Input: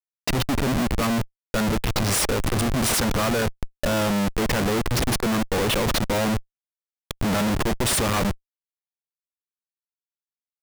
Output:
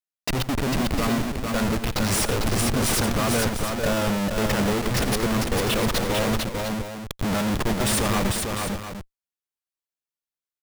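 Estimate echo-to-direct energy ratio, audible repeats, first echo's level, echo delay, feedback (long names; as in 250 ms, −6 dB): −3.0 dB, 3, −16.0 dB, 86 ms, repeats not evenly spaced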